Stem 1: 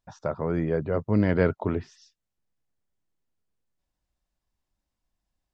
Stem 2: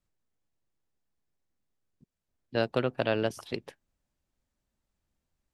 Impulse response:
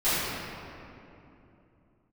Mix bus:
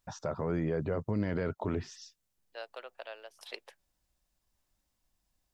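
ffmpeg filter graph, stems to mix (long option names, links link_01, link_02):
-filter_complex "[0:a]highshelf=frequency=4700:gain=8,acompressor=threshold=-26dB:ratio=6,volume=1.5dB,asplit=2[link_01][link_02];[1:a]highpass=frequency=560:width=0.5412,highpass=frequency=560:width=1.3066,aeval=exprs='val(0)*pow(10,-20*if(lt(mod(0.88*n/s,1),2*abs(0.88)/1000),1-mod(0.88*n/s,1)/(2*abs(0.88)/1000),(mod(0.88*n/s,1)-2*abs(0.88)/1000)/(1-2*abs(0.88)/1000))/20)':channel_layout=same,volume=1dB[link_03];[link_02]apad=whole_len=243997[link_04];[link_03][link_04]sidechaincompress=threshold=-45dB:ratio=8:attack=12:release=911[link_05];[link_01][link_05]amix=inputs=2:normalize=0,alimiter=limit=-23dB:level=0:latency=1:release=12"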